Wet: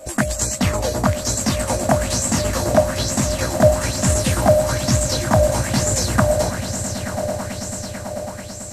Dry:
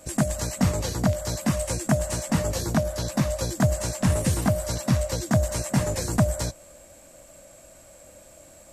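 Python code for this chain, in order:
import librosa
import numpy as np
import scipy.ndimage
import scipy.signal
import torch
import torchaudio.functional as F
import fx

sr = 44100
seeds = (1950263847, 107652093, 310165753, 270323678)

y = fx.peak_eq(x, sr, hz=160.0, db=-13.0, octaves=0.21)
y = fx.echo_swell(y, sr, ms=110, loudest=8, wet_db=-15.5)
y = fx.bell_lfo(y, sr, hz=1.1, low_hz=590.0, high_hz=7700.0, db=11)
y = F.gain(torch.from_numpy(y), 4.0).numpy()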